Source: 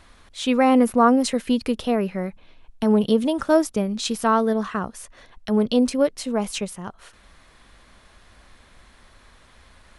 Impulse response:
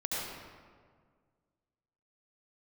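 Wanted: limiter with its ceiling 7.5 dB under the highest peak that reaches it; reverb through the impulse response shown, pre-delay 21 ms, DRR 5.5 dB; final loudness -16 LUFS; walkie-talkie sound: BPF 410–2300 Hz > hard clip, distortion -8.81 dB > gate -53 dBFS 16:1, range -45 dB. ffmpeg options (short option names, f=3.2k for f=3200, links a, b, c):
-filter_complex "[0:a]alimiter=limit=-13dB:level=0:latency=1,asplit=2[a][b];[1:a]atrim=start_sample=2205,adelay=21[c];[b][c]afir=irnorm=-1:irlink=0,volume=-11dB[d];[a][d]amix=inputs=2:normalize=0,highpass=410,lowpass=2.3k,asoftclip=type=hard:threshold=-24.5dB,agate=range=-45dB:threshold=-53dB:ratio=16,volume=14.5dB"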